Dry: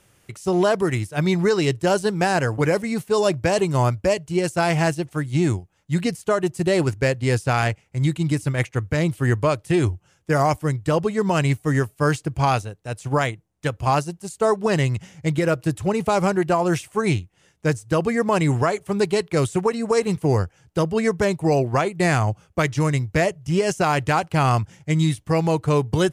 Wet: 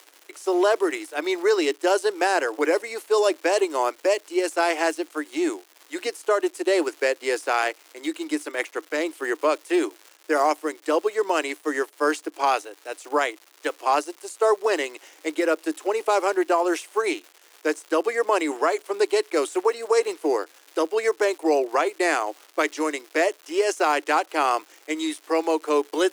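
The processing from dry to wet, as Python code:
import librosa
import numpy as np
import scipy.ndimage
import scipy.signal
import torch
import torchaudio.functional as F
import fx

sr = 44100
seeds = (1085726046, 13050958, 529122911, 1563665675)

y = fx.dmg_crackle(x, sr, seeds[0], per_s=340.0, level_db=-35.0)
y = scipy.signal.sosfilt(scipy.signal.cheby1(6, 1.0, 300.0, 'highpass', fs=sr, output='sos'), y)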